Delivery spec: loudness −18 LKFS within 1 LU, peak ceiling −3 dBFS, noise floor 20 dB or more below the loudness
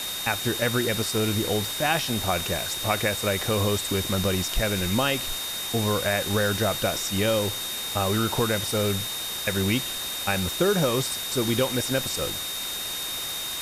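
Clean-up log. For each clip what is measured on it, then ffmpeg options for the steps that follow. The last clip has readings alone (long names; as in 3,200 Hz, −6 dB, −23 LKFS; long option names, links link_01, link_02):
interfering tone 3,700 Hz; level of the tone −32 dBFS; background noise floor −32 dBFS; target noise floor −45 dBFS; integrated loudness −25.0 LKFS; sample peak −8.0 dBFS; target loudness −18.0 LKFS
→ -af "bandreject=frequency=3700:width=30"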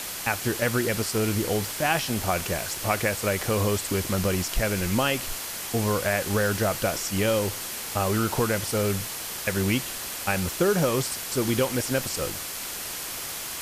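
interfering tone none found; background noise floor −34 dBFS; target noise floor −46 dBFS
→ -af "afftdn=noise_reduction=12:noise_floor=-34"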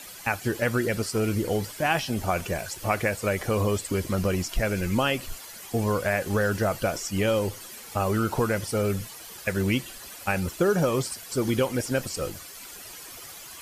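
background noise floor −43 dBFS; target noise floor −47 dBFS
→ -af "afftdn=noise_reduction=6:noise_floor=-43"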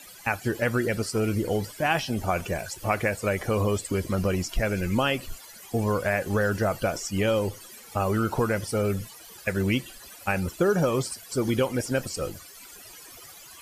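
background noise floor −47 dBFS; integrated loudness −27.0 LKFS; sample peak −9.0 dBFS; target loudness −18.0 LKFS
→ -af "volume=9dB,alimiter=limit=-3dB:level=0:latency=1"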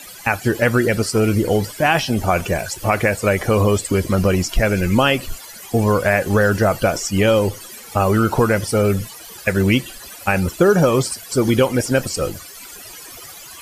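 integrated loudness −18.0 LKFS; sample peak −3.0 dBFS; background noise floor −38 dBFS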